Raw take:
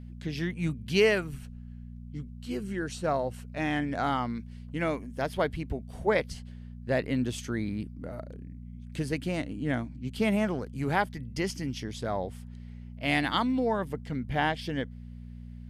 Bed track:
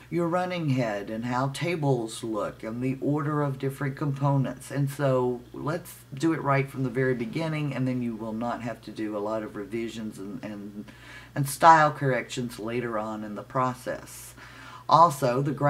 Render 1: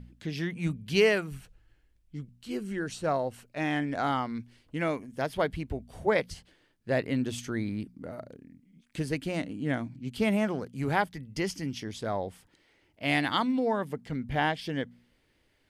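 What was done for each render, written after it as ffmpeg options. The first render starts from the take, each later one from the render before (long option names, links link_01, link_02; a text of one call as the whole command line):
ffmpeg -i in.wav -af "bandreject=frequency=60:width_type=h:width=4,bandreject=frequency=120:width_type=h:width=4,bandreject=frequency=180:width_type=h:width=4,bandreject=frequency=240:width_type=h:width=4" out.wav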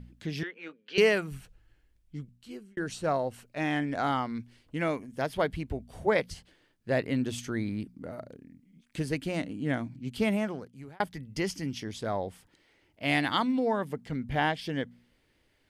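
ffmpeg -i in.wav -filter_complex "[0:a]asettb=1/sr,asplit=3[link_01][link_02][link_03];[link_01]atrim=end=0.434[link_04];[link_02]atrim=start=0.43:end=0.98,asetpts=PTS-STARTPTS,afade=type=in:duration=0.004:curve=qsin,afade=type=out:start_time=0.546:duration=0.004:curve=qsin,highpass=frequency=420:width=0.5412,highpass=frequency=420:width=1.3066,equalizer=frequency=470:width_type=q:width=4:gain=5,equalizer=frequency=690:width_type=q:width=4:gain=-7,equalizer=frequency=990:width_type=q:width=4:gain=-6,equalizer=frequency=1500:width_type=q:width=4:gain=4,equalizer=frequency=2200:width_type=q:width=4:gain=-3,equalizer=frequency=3700:width_type=q:width=4:gain=-5,lowpass=frequency=4000:width=0.5412,lowpass=frequency=4000:width=1.3066[link_05];[link_03]atrim=start=0.976[link_06];[link_04][link_05]acrossfade=duration=0.004:curve1=hsin:curve2=qsin[link_07];[link_07][link_06]acrossfade=duration=0.004:curve1=qsin:curve2=hsin,asplit=3[link_08][link_09][link_10];[link_08]atrim=end=2.77,asetpts=PTS-STARTPTS,afade=type=out:start_time=2.16:duration=0.61[link_11];[link_09]atrim=start=2.77:end=11,asetpts=PTS-STARTPTS,afade=type=in:duration=0.004:curve=hsin,afade=type=out:start_time=7.43:duration=0.8[link_12];[link_10]atrim=start=11,asetpts=PTS-STARTPTS,afade=type=in:duration=0.004:curve=hsin[link_13];[link_11][link_12][link_13]concat=n=3:v=0:a=1" out.wav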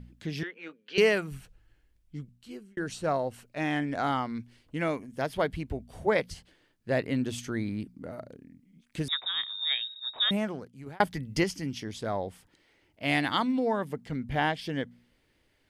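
ffmpeg -i in.wav -filter_complex "[0:a]asettb=1/sr,asplit=3[link_01][link_02][link_03];[link_01]atrim=end=9.084[link_04];[link_02]atrim=start=9.08:end=10.31,asetpts=PTS-STARTPTS,afade=type=in:duration=0.004:curve=qsin,afade=type=out:start_time=1.226:duration=0.004:curve=qsin,lowpass=frequency=3300:width_type=q:width=0.5098,lowpass=frequency=3300:width_type=q:width=0.6013,lowpass=frequency=3300:width_type=q:width=0.9,lowpass=frequency=3300:width_type=q:width=2.563,afreqshift=-3900[link_05];[link_03]atrim=start=10.306[link_06];[link_04][link_05]acrossfade=duration=0.004:curve1=hsin:curve2=qsin[link_07];[link_07][link_06]acrossfade=duration=0.004:curve1=qsin:curve2=hsin,asettb=1/sr,asplit=3[link_08][link_09][link_10];[link_08]atrim=end=10.864[link_11];[link_09]atrim=start=10.86:end=11.44,asetpts=PTS-STARTPTS,afade=type=in:duration=0.004:curve=qsin,afade=type=out:start_time=0.576:duration=0.004:curve=qsin,acontrast=39[link_12];[link_10]atrim=start=11.436[link_13];[link_11][link_12]acrossfade=duration=0.004:curve1=hsin:curve2=qsin[link_14];[link_14][link_13]acrossfade=duration=0.004:curve1=qsin:curve2=hsin" out.wav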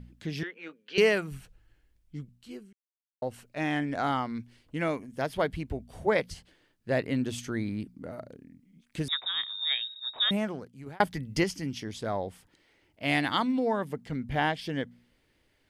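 ffmpeg -i in.wav -filter_complex "[0:a]asplit=3[link_01][link_02][link_03];[link_01]atrim=end=2.73,asetpts=PTS-STARTPTS,afade=type=out:start_time=2.726:duration=0.004:curve=hsin[link_04];[link_02]atrim=start=2.73:end=3.22,asetpts=PTS-STARTPTS,volume=0[link_05];[link_03]atrim=start=3.22,asetpts=PTS-STARTPTS,afade=type=in:duration=0.004:curve=hsin[link_06];[link_04][link_05][link_06]concat=n=3:v=0:a=1" out.wav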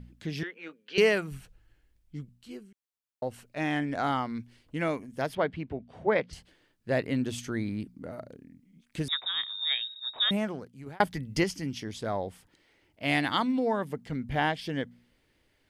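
ffmpeg -i in.wav -filter_complex "[0:a]asettb=1/sr,asplit=3[link_01][link_02][link_03];[link_01]atrim=end=5.354[link_04];[link_02]atrim=start=5.35:end=6.33,asetpts=PTS-STARTPTS,afade=type=in:duration=0.004:curve=qsin,afade=type=out:start_time=0.976:duration=0.004:curve=qsin,highpass=120,lowpass=3100[link_05];[link_03]atrim=start=6.326[link_06];[link_04][link_05]acrossfade=duration=0.004:curve1=hsin:curve2=qsin[link_07];[link_07][link_06]acrossfade=duration=0.004:curve1=qsin:curve2=hsin" out.wav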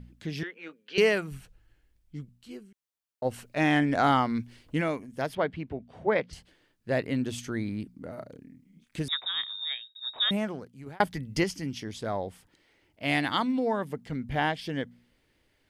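ffmpeg -i in.wav -filter_complex "[0:a]asplit=3[link_01][link_02][link_03];[link_01]afade=type=out:start_time=3.24:duration=0.02[link_04];[link_02]acontrast=50,afade=type=in:start_time=3.24:duration=0.02,afade=type=out:start_time=4.8:duration=0.02[link_05];[link_03]afade=type=in:start_time=4.8:duration=0.02[link_06];[link_04][link_05][link_06]amix=inputs=3:normalize=0,asettb=1/sr,asplit=3[link_07][link_08][link_09];[link_07]atrim=end=8.144[link_10];[link_08]atrim=start=8.14:end=8.99,asetpts=PTS-STARTPTS,afade=type=in:duration=0.004:curve=qsin,afade=type=out:start_time=0.846:duration=0.004:curve=qsin,asplit=2[link_11][link_12];[link_12]adelay=31,volume=-6.5dB[link_13];[link_11][link_13]amix=inputs=2:normalize=0,atrim=end_sample=37485[link_14];[link_09]atrim=start=8.986[link_15];[link_10][link_14]acrossfade=duration=0.004:curve1=hsin:curve2=qsin[link_16];[link_16][link_15]acrossfade=duration=0.004:curve1=qsin:curve2=hsin,asplit=2[link_17][link_18];[link_17]atrim=end=9.95,asetpts=PTS-STARTPTS,afade=type=out:start_time=9.53:duration=0.42[link_19];[link_18]atrim=start=9.95,asetpts=PTS-STARTPTS,afade=type=in:duration=0.004:curve=hsin[link_20];[link_19][link_20]concat=n=2:v=0:a=1" out.wav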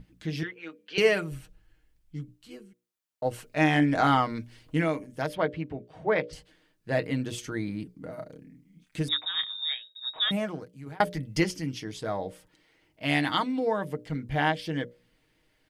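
ffmpeg -i in.wav -af "bandreject=frequency=60:width_type=h:width=6,bandreject=frequency=120:width_type=h:width=6,bandreject=frequency=180:width_type=h:width=6,bandreject=frequency=240:width_type=h:width=6,bandreject=frequency=300:width_type=h:width=6,bandreject=frequency=360:width_type=h:width=6,bandreject=frequency=420:width_type=h:width=6,bandreject=frequency=480:width_type=h:width=6,bandreject=frequency=540:width_type=h:width=6,bandreject=frequency=600:width_type=h:width=6,aecho=1:1:6.4:0.47" out.wav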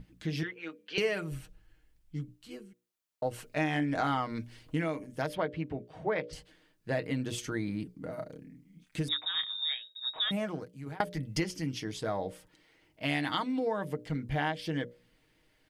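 ffmpeg -i in.wav -af "acompressor=threshold=-29dB:ratio=3" out.wav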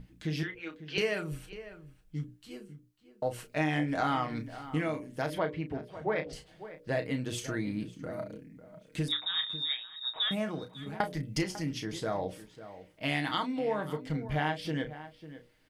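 ffmpeg -i in.wav -filter_complex "[0:a]asplit=2[link_01][link_02];[link_02]adelay=33,volume=-9dB[link_03];[link_01][link_03]amix=inputs=2:normalize=0,asplit=2[link_04][link_05];[link_05]adelay=548.1,volume=-14dB,highshelf=frequency=4000:gain=-12.3[link_06];[link_04][link_06]amix=inputs=2:normalize=0" out.wav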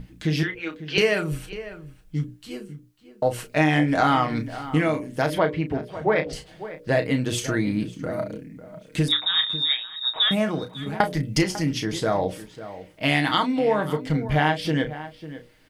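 ffmpeg -i in.wav -af "volume=10dB" out.wav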